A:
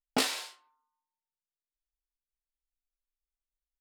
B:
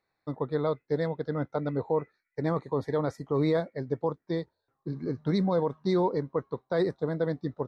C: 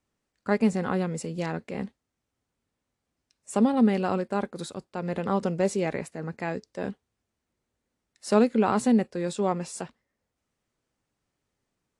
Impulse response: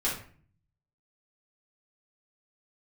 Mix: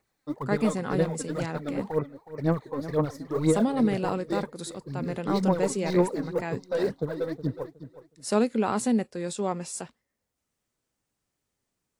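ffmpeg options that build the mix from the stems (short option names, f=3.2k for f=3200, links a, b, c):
-filter_complex "[1:a]asoftclip=type=tanh:threshold=-18.5dB,aphaser=in_gain=1:out_gain=1:delay=3.9:decay=0.73:speed=2:type=sinusoidal,volume=-3.5dB,asplit=2[a][b];[b]volume=-14dB[c];[2:a]volume=-3dB[d];[c]aecho=0:1:366|732|1098|1464:1|0.25|0.0625|0.0156[e];[a][d][e]amix=inputs=3:normalize=0,highshelf=f=6.3k:g=10"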